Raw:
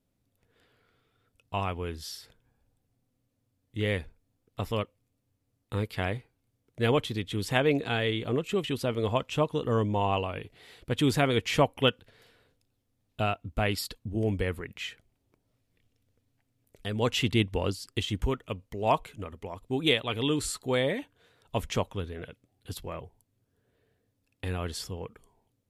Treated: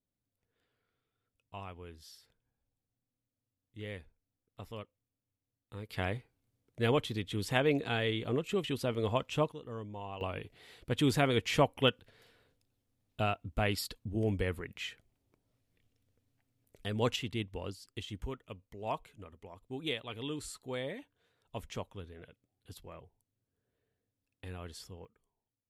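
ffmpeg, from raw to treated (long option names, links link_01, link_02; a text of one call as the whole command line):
ffmpeg -i in.wav -af "asetnsamples=nb_out_samples=441:pad=0,asendcmd='5.89 volume volume -4dB;9.52 volume volume -16dB;10.21 volume volume -3.5dB;17.16 volume volume -11.5dB;25.05 volume volume -19dB',volume=-14dB" out.wav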